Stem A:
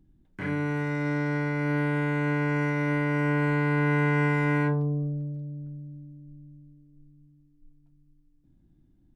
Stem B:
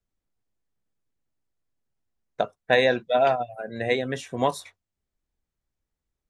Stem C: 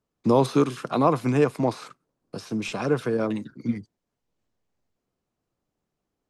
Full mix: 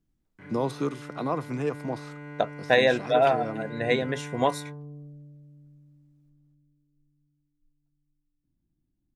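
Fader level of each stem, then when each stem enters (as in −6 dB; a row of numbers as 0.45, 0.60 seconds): −15.0, −0.5, −8.5 decibels; 0.00, 0.00, 0.25 seconds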